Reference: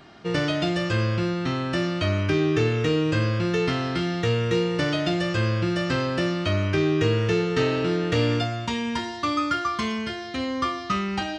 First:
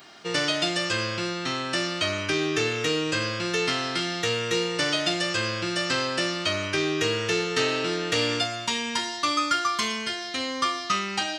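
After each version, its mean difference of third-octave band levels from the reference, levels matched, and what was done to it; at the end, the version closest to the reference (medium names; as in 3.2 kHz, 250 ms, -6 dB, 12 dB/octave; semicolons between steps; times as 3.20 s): 6.0 dB: RIAA curve recording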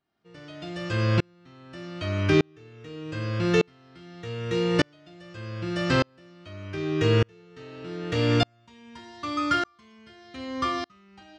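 10.5 dB: sawtooth tremolo in dB swelling 0.83 Hz, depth 40 dB; trim +5 dB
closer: first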